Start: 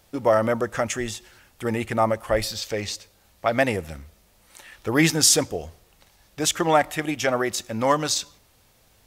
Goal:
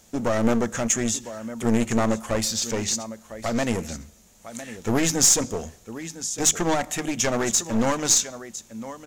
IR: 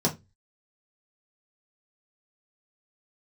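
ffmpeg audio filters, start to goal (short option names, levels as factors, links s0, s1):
-filter_complex "[0:a]alimiter=limit=0.266:level=0:latency=1:release=194,equalizer=f=220:w=3.2:g=10,aecho=1:1:1005:0.158,asplit=2[s0][s1];[1:a]atrim=start_sample=2205[s2];[s1][s2]afir=irnorm=-1:irlink=0,volume=0.0398[s3];[s0][s3]amix=inputs=2:normalize=0,aeval=exprs='clip(val(0),-1,0.0422)':c=same,equalizer=f=6800:w=2.4:g=13.5"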